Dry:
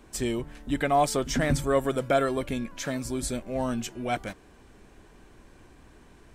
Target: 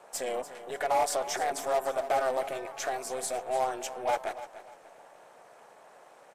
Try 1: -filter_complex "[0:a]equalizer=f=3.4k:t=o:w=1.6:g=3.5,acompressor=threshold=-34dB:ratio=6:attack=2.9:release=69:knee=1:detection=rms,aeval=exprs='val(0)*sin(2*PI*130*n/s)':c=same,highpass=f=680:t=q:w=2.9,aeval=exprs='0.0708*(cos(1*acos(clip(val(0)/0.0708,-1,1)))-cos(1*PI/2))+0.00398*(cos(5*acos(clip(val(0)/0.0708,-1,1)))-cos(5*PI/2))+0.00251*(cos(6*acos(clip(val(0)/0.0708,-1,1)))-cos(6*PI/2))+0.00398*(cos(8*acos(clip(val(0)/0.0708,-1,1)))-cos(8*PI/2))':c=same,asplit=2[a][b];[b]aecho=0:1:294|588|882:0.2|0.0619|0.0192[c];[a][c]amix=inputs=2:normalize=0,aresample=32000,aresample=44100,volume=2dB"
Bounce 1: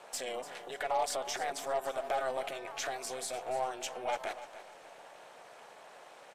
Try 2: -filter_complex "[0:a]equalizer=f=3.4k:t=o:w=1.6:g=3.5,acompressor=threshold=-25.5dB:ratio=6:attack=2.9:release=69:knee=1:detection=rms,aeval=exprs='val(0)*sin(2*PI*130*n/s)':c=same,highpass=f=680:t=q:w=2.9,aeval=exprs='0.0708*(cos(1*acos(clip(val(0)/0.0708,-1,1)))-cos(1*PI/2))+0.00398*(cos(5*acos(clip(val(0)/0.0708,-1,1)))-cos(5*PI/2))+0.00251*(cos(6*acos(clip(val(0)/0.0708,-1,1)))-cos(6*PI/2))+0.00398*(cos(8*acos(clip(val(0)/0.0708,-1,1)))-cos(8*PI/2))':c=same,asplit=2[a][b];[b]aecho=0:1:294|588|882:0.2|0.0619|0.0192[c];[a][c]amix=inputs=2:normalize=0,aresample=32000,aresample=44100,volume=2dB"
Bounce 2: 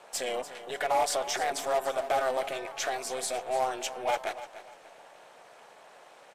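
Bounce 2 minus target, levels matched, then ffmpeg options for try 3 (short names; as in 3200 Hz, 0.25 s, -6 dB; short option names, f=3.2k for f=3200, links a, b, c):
4000 Hz band +4.5 dB
-filter_complex "[0:a]equalizer=f=3.4k:t=o:w=1.6:g=-4.5,acompressor=threshold=-25.5dB:ratio=6:attack=2.9:release=69:knee=1:detection=rms,aeval=exprs='val(0)*sin(2*PI*130*n/s)':c=same,highpass=f=680:t=q:w=2.9,aeval=exprs='0.0708*(cos(1*acos(clip(val(0)/0.0708,-1,1)))-cos(1*PI/2))+0.00398*(cos(5*acos(clip(val(0)/0.0708,-1,1)))-cos(5*PI/2))+0.00251*(cos(6*acos(clip(val(0)/0.0708,-1,1)))-cos(6*PI/2))+0.00398*(cos(8*acos(clip(val(0)/0.0708,-1,1)))-cos(8*PI/2))':c=same,asplit=2[a][b];[b]aecho=0:1:294|588|882:0.2|0.0619|0.0192[c];[a][c]amix=inputs=2:normalize=0,aresample=32000,aresample=44100,volume=2dB"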